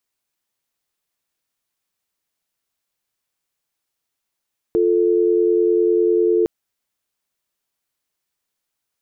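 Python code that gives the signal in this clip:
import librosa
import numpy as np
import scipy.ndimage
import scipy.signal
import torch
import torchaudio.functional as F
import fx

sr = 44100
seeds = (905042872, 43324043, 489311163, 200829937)

y = fx.call_progress(sr, length_s=1.71, kind='dial tone', level_db=-16.0)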